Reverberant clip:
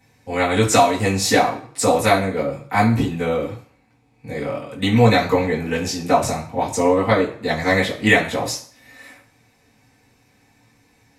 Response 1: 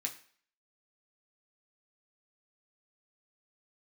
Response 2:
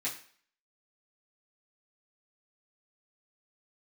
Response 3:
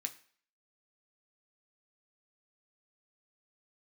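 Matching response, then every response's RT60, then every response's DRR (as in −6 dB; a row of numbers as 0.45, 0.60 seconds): 2; 0.50, 0.50, 0.50 seconds; 0.0, −9.5, 4.5 decibels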